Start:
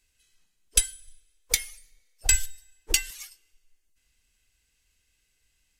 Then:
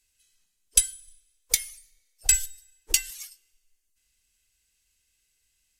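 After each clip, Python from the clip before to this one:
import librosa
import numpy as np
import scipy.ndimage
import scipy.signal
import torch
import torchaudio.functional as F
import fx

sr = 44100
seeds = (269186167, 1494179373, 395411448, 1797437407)

y = fx.peak_eq(x, sr, hz=12000.0, db=9.5, octaves=2.6)
y = y * 10.0 ** (-6.5 / 20.0)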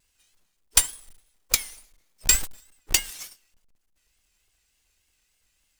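y = fx.halfwave_hold(x, sr)
y = fx.vibrato(y, sr, rate_hz=3.4, depth_cents=90.0)
y = y * 10.0 ** (-1.5 / 20.0)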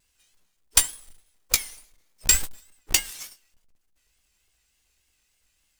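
y = fx.doubler(x, sr, ms=16.0, db=-10.5)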